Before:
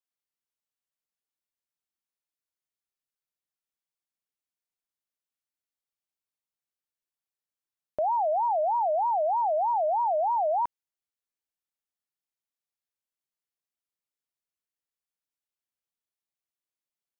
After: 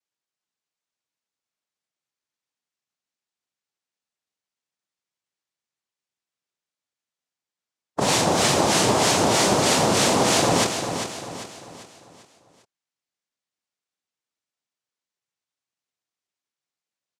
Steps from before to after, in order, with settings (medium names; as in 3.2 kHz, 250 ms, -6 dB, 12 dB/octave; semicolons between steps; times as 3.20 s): formant shift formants -5 st; noise-vocoded speech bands 2; feedback delay 396 ms, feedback 43%, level -8 dB; trim +6 dB